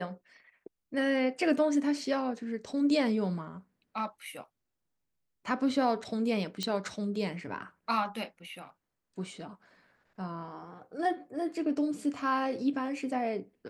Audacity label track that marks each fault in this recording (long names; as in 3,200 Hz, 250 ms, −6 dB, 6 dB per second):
6.630000	6.630000	click −18 dBFS